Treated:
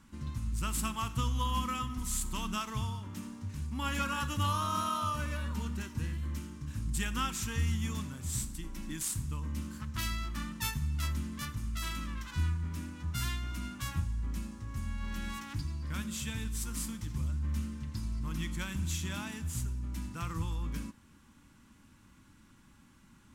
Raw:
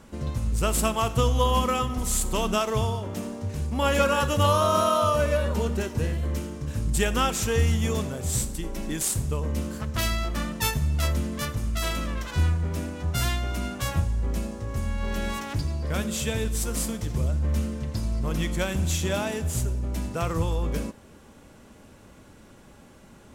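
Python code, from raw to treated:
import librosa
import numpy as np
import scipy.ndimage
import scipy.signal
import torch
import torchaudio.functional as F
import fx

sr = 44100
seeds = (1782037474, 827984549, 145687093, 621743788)

y = fx.band_shelf(x, sr, hz=540.0, db=-15.0, octaves=1.2)
y = y * 10.0 ** (-8.5 / 20.0)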